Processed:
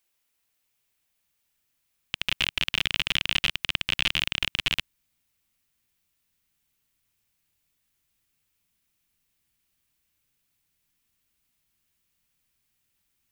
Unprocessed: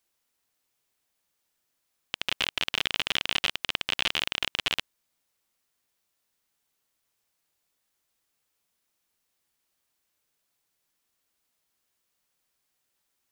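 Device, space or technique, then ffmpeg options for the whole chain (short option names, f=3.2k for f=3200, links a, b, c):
presence and air boost: -af "equalizer=f=2.5k:t=o:w=0.95:g=5.5,highshelf=f=9.5k:g=6.5,asubboost=boost=4.5:cutoff=230,volume=-2dB"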